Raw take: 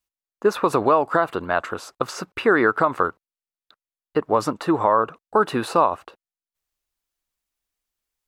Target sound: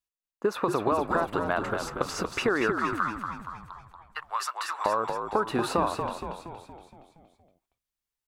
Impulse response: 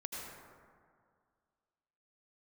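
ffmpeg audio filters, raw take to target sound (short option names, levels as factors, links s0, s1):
-filter_complex "[0:a]agate=range=0.398:threshold=0.00631:ratio=16:detection=peak,asettb=1/sr,asplit=3[s0][s1][s2];[s0]atrim=end=2.794[s3];[s1]atrim=start=2.79:end=4.86,asetpts=PTS-STARTPTS,afade=t=in:d=0.004:c=qsin,afade=t=out:st=2.066:d=0.004:c=qsin,highpass=f=1200:w=0.5412,highpass=f=1200:w=1.3066[s4];[s2]atrim=start=4.856[s5];[s3][s4]acrossfade=d=0.004:c1=hsin:c2=qsin[s6];[s6][s5]acrossfade=d=0.004:c1=qsin:c2=hsin,acompressor=threshold=0.0562:ratio=3,asplit=8[s7][s8][s9][s10][s11][s12][s13][s14];[s8]adelay=234,afreqshift=-61,volume=0.501[s15];[s9]adelay=468,afreqshift=-122,volume=0.275[s16];[s10]adelay=702,afreqshift=-183,volume=0.151[s17];[s11]adelay=936,afreqshift=-244,volume=0.0832[s18];[s12]adelay=1170,afreqshift=-305,volume=0.0457[s19];[s13]adelay=1404,afreqshift=-366,volume=0.0251[s20];[s14]adelay=1638,afreqshift=-427,volume=0.0138[s21];[s7][s15][s16][s17][s18][s19][s20][s21]amix=inputs=8:normalize=0"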